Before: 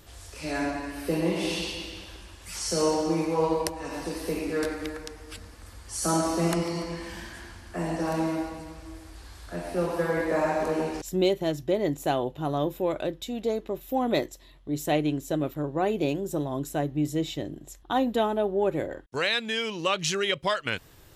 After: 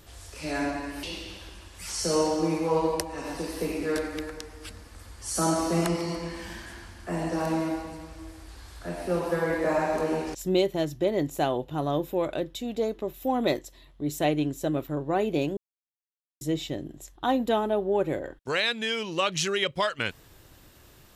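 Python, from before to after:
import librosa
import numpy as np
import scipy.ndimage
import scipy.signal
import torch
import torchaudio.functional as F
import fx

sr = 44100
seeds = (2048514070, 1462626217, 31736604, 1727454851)

y = fx.edit(x, sr, fx.cut(start_s=1.03, length_s=0.67),
    fx.silence(start_s=16.24, length_s=0.84), tone=tone)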